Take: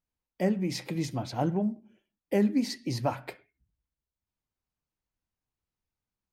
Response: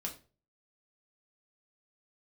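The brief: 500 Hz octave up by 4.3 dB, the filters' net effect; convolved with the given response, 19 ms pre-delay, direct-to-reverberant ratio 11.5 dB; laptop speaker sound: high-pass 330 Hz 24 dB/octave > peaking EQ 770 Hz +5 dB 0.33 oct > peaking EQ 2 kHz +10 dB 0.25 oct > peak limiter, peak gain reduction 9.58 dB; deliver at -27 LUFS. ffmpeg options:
-filter_complex "[0:a]equalizer=f=500:t=o:g=5.5,asplit=2[s0][s1];[1:a]atrim=start_sample=2205,adelay=19[s2];[s1][s2]afir=irnorm=-1:irlink=0,volume=0.282[s3];[s0][s3]amix=inputs=2:normalize=0,highpass=f=330:w=0.5412,highpass=f=330:w=1.3066,equalizer=f=770:t=o:w=0.33:g=5,equalizer=f=2000:t=o:w=0.25:g=10,volume=2.24,alimiter=limit=0.2:level=0:latency=1"

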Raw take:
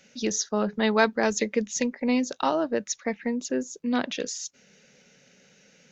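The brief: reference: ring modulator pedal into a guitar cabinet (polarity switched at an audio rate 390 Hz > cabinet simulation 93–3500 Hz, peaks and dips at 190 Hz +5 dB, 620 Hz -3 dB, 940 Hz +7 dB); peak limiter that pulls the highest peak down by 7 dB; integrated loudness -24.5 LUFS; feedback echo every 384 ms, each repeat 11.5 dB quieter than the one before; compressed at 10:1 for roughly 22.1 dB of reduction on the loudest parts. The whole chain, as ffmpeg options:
-af "acompressor=threshold=0.0126:ratio=10,alimiter=level_in=2.51:limit=0.0631:level=0:latency=1,volume=0.398,aecho=1:1:384|768|1152:0.266|0.0718|0.0194,aeval=exprs='val(0)*sgn(sin(2*PI*390*n/s))':c=same,highpass=93,equalizer=f=190:t=q:w=4:g=5,equalizer=f=620:t=q:w=4:g=-3,equalizer=f=940:t=q:w=4:g=7,lowpass=f=3500:w=0.5412,lowpass=f=3500:w=1.3066,volume=8.91"

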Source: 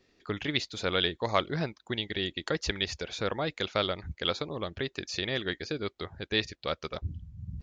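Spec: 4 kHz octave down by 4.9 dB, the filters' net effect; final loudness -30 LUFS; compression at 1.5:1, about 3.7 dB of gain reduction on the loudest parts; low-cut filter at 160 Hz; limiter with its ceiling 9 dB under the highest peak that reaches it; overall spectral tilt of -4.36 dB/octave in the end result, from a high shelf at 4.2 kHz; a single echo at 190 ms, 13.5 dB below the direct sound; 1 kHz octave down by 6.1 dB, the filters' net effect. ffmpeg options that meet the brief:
-af "highpass=160,equalizer=f=1000:t=o:g=-8,equalizer=f=4000:t=o:g=-3.5,highshelf=f=4200:g=-4,acompressor=threshold=0.0158:ratio=1.5,alimiter=level_in=1.41:limit=0.0631:level=0:latency=1,volume=0.708,aecho=1:1:190:0.211,volume=3.55"

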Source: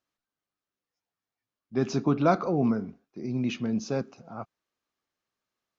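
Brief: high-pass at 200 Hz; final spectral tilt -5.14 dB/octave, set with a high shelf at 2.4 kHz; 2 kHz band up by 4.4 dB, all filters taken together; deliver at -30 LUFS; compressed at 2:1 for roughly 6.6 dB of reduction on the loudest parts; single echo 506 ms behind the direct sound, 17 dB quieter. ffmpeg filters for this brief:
-af "highpass=200,equalizer=f=2000:t=o:g=4.5,highshelf=f=2400:g=3.5,acompressor=threshold=0.0398:ratio=2,aecho=1:1:506:0.141,volume=1.41"

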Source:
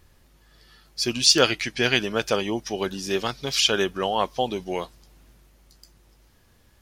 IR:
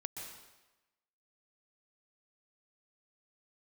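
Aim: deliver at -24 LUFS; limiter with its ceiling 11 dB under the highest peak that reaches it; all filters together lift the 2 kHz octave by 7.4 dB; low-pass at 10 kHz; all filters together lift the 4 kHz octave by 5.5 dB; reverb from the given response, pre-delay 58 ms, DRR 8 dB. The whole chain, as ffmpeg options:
-filter_complex "[0:a]lowpass=10000,equalizer=f=2000:t=o:g=8.5,equalizer=f=4000:t=o:g=4.5,alimiter=limit=0.398:level=0:latency=1,asplit=2[s0][s1];[1:a]atrim=start_sample=2205,adelay=58[s2];[s1][s2]afir=irnorm=-1:irlink=0,volume=0.447[s3];[s0][s3]amix=inputs=2:normalize=0,volume=0.75"

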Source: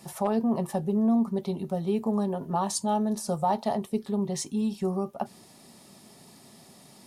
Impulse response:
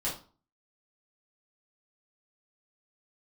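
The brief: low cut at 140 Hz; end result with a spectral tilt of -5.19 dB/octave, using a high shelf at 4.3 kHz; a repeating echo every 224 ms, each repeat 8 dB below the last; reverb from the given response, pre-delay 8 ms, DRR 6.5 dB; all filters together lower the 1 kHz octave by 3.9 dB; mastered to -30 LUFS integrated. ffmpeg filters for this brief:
-filter_complex "[0:a]highpass=140,equalizer=f=1000:t=o:g=-5.5,highshelf=f=4300:g=5.5,aecho=1:1:224|448|672|896|1120:0.398|0.159|0.0637|0.0255|0.0102,asplit=2[s0][s1];[1:a]atrim=start_sample=2205,adelay=8[s2];[s1][s2]afir=irnorm=-1:irlink=0,volume=0.266[s3];[s0][s3]amix=inputs=2:normalize=0,volume=0.708"

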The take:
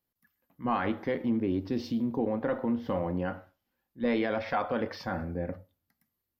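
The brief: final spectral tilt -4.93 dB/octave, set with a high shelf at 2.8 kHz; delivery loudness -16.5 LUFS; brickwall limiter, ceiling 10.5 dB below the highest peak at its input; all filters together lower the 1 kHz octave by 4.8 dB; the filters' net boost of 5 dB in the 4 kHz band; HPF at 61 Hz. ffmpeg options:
-af "highpass=61,equalizer=f=1000:t=o:g=-7.5,highshelf=f=2800:g=3.5,equalizer=f=4000:t=o:g=4,volume=11.9,alimiter=limit=0.447:level=0:latency=1"

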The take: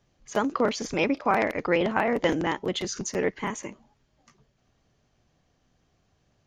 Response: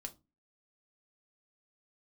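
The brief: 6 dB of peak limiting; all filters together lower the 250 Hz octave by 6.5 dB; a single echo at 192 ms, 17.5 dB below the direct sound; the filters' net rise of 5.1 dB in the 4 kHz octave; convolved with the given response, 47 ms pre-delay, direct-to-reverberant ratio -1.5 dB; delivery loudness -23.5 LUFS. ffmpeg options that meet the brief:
-filter_complex "[0:a]equalizer=f=250:t=o:g=-9,equalizer=f=4000:t=o:g=7,alimiter=limit=0.178:level=0:latency=1,aecho=1:1:192:0.133,asplit=2[s0][s1];[1:a]atrim=start_sample=2205,adelay=47[s2];[s1][s2]afir=irnorm=-1:irlink=0,volume=1.88[s3];[s0][s3]amix=inputs=2:normalize=0,volume=1.19"

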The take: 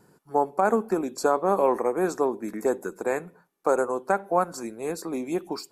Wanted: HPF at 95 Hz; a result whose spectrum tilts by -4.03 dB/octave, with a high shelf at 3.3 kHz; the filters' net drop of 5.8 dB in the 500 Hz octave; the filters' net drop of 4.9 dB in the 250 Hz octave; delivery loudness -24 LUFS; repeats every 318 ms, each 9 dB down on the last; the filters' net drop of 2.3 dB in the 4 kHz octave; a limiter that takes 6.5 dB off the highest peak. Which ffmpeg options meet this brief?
-af "highpass=95,equalizer=f=250:t=o:g=-4,equalizer=f=500:t=o:g=-6,highshelf=f=3300:g=5.5,equalizer=f=4000:t=o:g=-8,alimiter=limit=0.133:level=0:latency=1,aecho=1:1:318|636|954|1272:0.355|0.124|0.0435|0.0152,volume=2.37"

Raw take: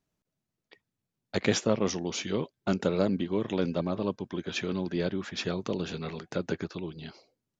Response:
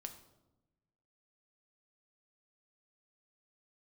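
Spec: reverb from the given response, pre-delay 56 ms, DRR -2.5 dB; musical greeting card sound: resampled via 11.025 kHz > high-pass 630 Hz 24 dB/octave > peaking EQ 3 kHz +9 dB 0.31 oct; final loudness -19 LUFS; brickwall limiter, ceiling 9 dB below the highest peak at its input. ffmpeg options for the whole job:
-filter_complex "[0:a]alimiter=limit=0.112:level=0:latency=1,asplit=2[s0][s1];[1:a]atrim=start_sample=2205,adelay=56[s2];[s1][s2]afir=irnorm=-1:irlink=0,volume=2.11[s3];[s0][s3]amix=inputs=2:normalize=0,aresample=11025,aresample=44100,highpass=f=630:w=0.5412,highpass=f=630:w=1.3066,equalizer=f=3000:t=o:w=0.31:g=9,volume=5.31"

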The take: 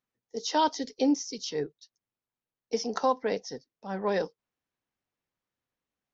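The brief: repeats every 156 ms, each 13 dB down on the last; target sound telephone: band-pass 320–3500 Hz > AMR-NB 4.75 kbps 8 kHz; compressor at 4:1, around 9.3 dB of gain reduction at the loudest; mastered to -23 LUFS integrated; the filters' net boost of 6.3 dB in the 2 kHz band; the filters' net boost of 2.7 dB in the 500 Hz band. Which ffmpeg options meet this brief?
-af "equalizer=f=500:t=o:g=3.5,equalizer=f=2000:t=o:g=8,acompressor=threshold=0.0355:ratio=4,highpass=320,lowpass=3500,aecho=1:1:156|312|468:0.224|0.0493|0.0108,volume=5.31" -ar 8000 -c:a libopencore_amrnb -b:a 4750

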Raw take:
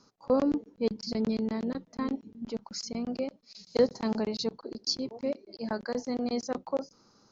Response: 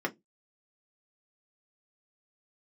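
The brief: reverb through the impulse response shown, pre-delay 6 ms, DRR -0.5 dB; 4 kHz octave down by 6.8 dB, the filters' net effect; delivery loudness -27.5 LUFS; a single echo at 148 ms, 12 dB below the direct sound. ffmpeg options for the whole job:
-filter_complex "[0:a]equalizer=f=4000:t=o:g=-8.5,aecho=1:1:148:0.251,asplit=2[s0][s1];[1:a]atrim=start_sample=2205,adelay=6[s2];[s1][s2]afir=irnorm=-1:irlink=0,volume=0.473[s3];[s0][s3]amix=inputs=2:normalize=0,volume=0.944"

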